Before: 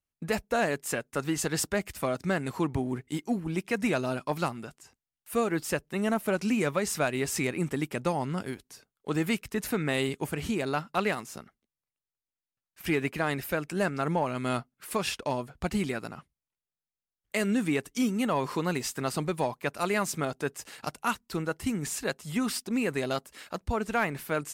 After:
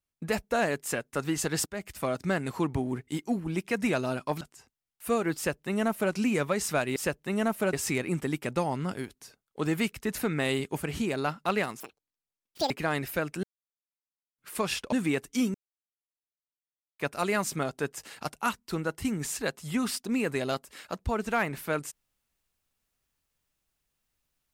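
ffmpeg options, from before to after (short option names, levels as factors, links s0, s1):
-filter_complex "[0:a]asplit=12[s0][s1][s2][s3][s4][s5][s6][s7][s8][s9][s10][s11];[s0]atrim=end=1.66,asetpts=PTS-STARTPTS,afade=t=out:st=1.656:d=0.004:c=hsin:silence=0.158489[s12];[s1]atrim=start=1.66:end=4.412,asetpts=PTS-STARTPTS,afade=t=in:d=0.54:c=qsin:silence=0.158489[s13];[s2]atrim=start=4.668:end=7.222[s14];[s3]atrim=start=5.618:end=6.392[s15];[s4]atrim=start=7.218:end=11.294[s16];[s5]atrim=start=11.29:end=13.06,asetpts=PTS-STARTPTS,asetrate=86436,aresample=44100[s17];[s6]atrim=start=13.056:end=13.79,asetpts=PTS-STARTPTS,afade=t=out:st=0.73:d=0.004:c=hsin[s18];[s7]atrim=start=13.79:end=14.74,asetpts=PTS-STARTPTS,volume=0[s19];[s8]atrim=start=14.74:end=15.282,asetpts=PTS-STARTPTS,afade=t=in:d=0.004:c=hsin[s20];[s9]atrim=start=17.538:end=18.16,asetpts=PTS-STARTPTS,afade=t=out:st=0.618:d=0.004:c=hsin[s21];[s10]atrim=start=18.16:end=19.61,asetpts=PTS-STARTPTS,volume=0[s22];[s11]atrim=start=19.61,asetpts=PTS-STARTPTS,afade=t=in:d=0.004:c=hsin[s23];[s12][s13]concat=n=2:v=0:a=1[s24];[s24][s14]acrossfade=d=0.004:c1=hsin:c2=hsin[s25];[s25][s15]acrossfade=d=0.004:c1=hsin:c2=hsin[s26];[s26][s16]acrossfade=d=0.004:c1=hsin:c2=hsin[s27];[s27][s17]acrossfade=d=0.004:c1=hsin:c2=hsin[s28];[s18][s19][s20]concat=n=3:v=0:a=1[s29];[s28][s29]acrossfade=d=0.004:c1=hsin:c2=hsin[s30];[s21][s22][s23]concat=n=3:v=0:a=1[s31];[s30][s31]acrossfade=d=0.004:c1=hsin:c2=hsin"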